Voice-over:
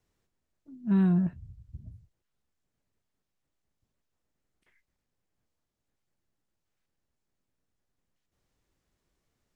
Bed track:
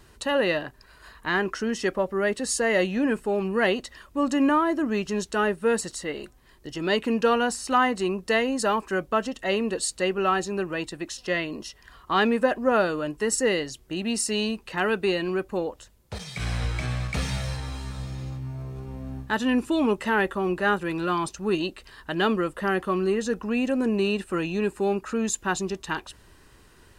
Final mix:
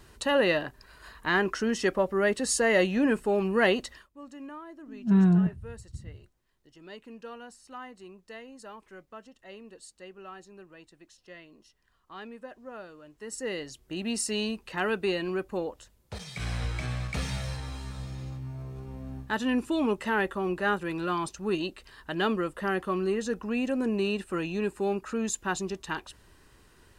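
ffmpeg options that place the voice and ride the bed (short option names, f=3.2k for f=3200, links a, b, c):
-filter_complex "[0:a]adelay=4200,volume=3dB[a];[1:a]volume=17dB,afade=t=out:st=3.89:d=0.2:silence=0.0891251,afade=t=in:st=13.12:d=0.91:silence=0.133352[b];[a][b]amix=inputs=2:normalize=0"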